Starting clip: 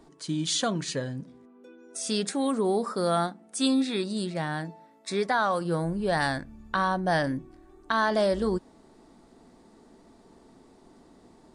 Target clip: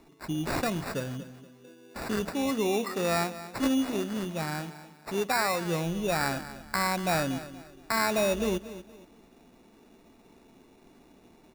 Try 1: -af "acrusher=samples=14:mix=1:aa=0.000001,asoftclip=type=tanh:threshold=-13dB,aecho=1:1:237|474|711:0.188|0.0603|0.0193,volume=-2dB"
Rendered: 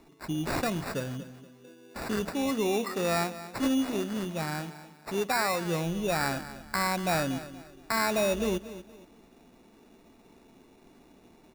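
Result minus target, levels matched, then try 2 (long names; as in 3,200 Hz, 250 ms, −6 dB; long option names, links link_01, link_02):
soft clipping: distortion +15 dB
-af "acrusher=samples=14:mix=1:aa=0.000001,asoftclip=type=tanh:threshold=-5dB,aecho=1:1:237|474|711:0.188|0.0603|0.0193,volume=-2dB"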